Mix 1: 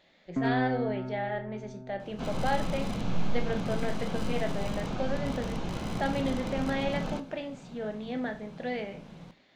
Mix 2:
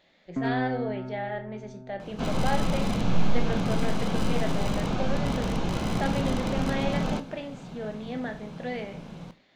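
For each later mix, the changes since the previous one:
second sound +6.0 dB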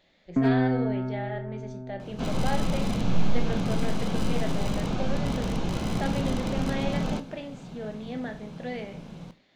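first sound +7.0 dB; master: add peaking EQ 1.2 kHz -3 dB 2.5 oct

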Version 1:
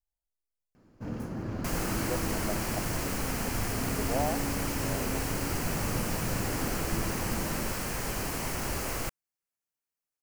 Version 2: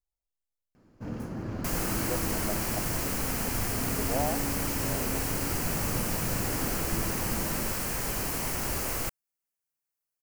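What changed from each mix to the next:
second sound: add treble shelf 8.9 kHz +7 dB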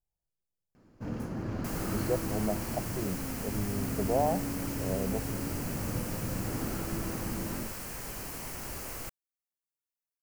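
speech: add peaking EQ 200 Hz +14.5 dB 2 oct; second sound -8.5 dB

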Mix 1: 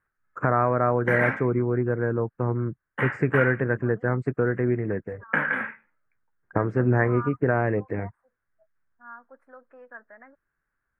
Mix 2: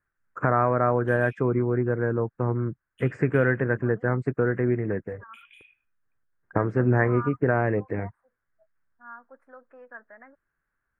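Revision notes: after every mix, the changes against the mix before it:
background: add rippled Chebyshev high-pass 2.4 kHz, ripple 9 dB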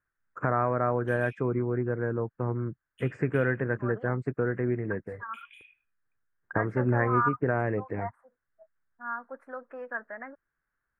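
first voice -4.5 dB; second voice +8.5 dB

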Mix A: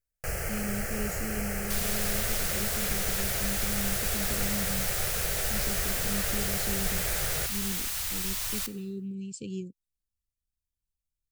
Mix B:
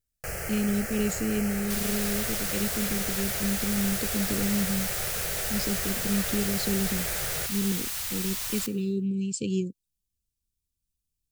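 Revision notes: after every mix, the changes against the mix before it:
speech +9.0 dB; master: add bass shelf 62 Hz -7.5 dB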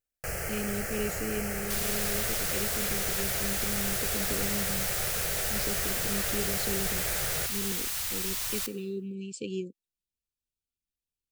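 speech: add tone controls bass -14 dB, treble -10 dB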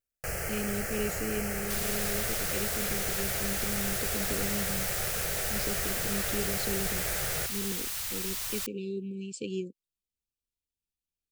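reverb: off

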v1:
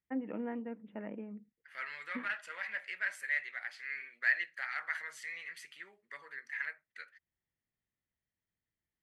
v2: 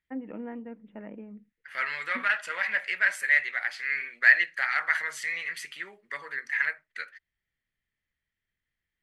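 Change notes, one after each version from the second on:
second voice +11.5 dB; master: remove high-pass 110 Hz 6 dB/octave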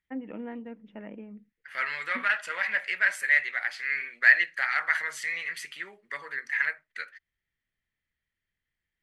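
first voice: remove low-pass 2.2 kHz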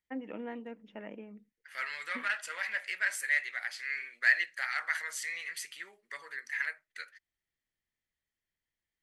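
second voice -7.5 dB; master: add tone controls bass -8 dB, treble +11 dB

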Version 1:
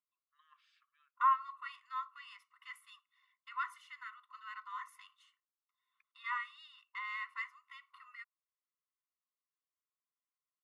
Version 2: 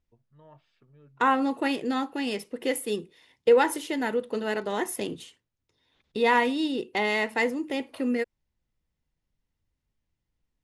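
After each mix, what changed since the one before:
second voice: remove Savitzky-Golay filter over 65 samples; master: remove brick-wall FIR high-pass 1 kHz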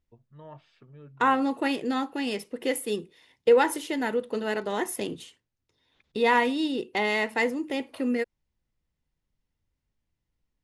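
first voice +7.5 dB

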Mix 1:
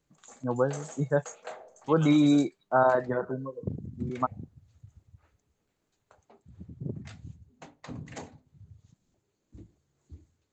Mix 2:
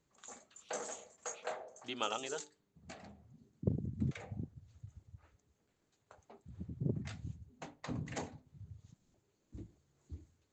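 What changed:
first voice: muted; second voice +7.5 dB

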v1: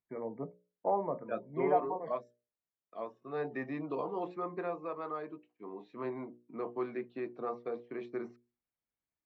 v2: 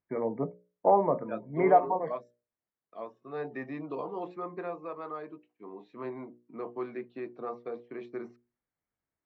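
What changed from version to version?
first voice +8.5 dB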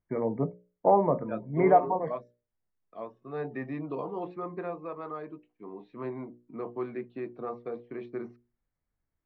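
second voice: add low-pass 4.3 kHz; master: remove high-pass 270 Hz 6 dB/octave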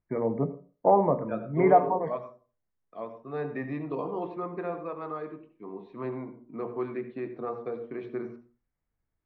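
reverb: on, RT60 0.35 s

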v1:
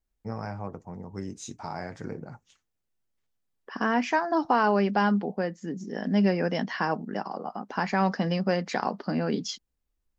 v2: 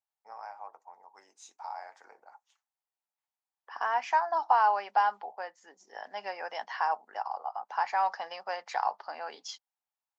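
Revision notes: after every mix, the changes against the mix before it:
second voice +3.5 dB; master: add ladder high-pass 740 Hz, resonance 60%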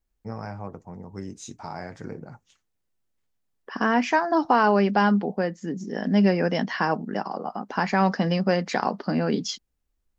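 master: remove ladder high-pass 740 Hz, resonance 60%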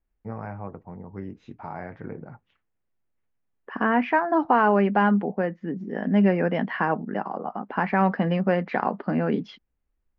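master: add low-pass 2.6 kHz 24 dB/octave

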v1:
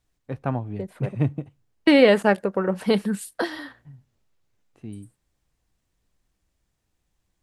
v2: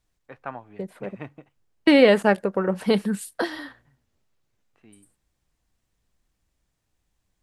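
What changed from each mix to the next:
first voice: add band-pass filter 1.6 kHz, Q 0.9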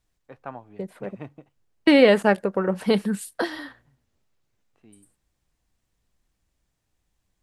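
first voice: add peaking EQ 1.9 kHz -6.5 dB 1.6 oct

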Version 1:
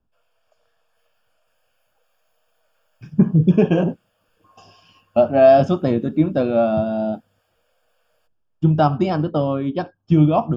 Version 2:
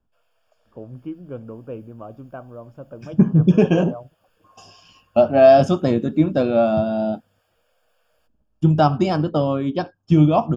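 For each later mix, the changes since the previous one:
first voice: unmuted; second voice: remove distance through air 120 m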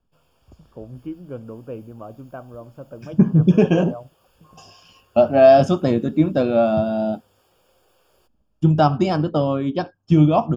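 background: remove rippled Chebyshev high-pass 450 Hz, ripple 9 dB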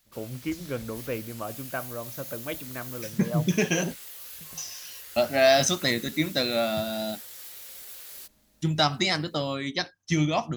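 first voice: entry -0.60 s; second voice -11.0 dB; master: remove boxcar filter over 22 samples

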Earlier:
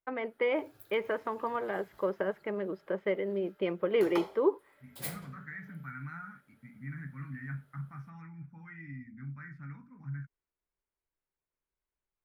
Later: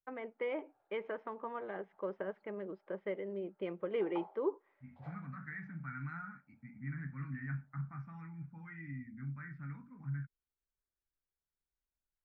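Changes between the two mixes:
first voice -7.5 dB; background: add band-pass filter 800 Hz, Q 4.6; master: add distance through air 200 m

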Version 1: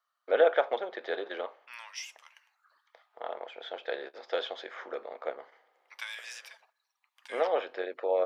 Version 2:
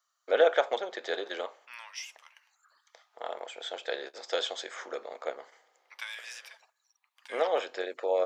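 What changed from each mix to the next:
first voice: remove Gaussian low-pass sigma 2.3 samples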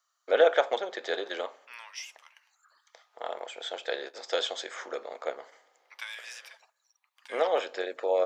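first voice: send on

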